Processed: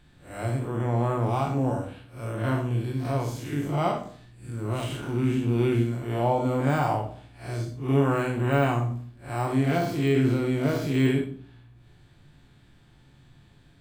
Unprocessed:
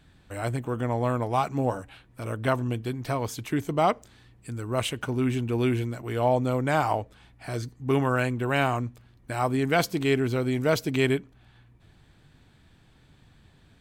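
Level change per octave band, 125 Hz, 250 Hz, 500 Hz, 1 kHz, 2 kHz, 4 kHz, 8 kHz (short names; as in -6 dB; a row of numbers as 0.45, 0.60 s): +3.5, +2.0, -1.0, -1.5, -3.5, -4.0, -4.5 dB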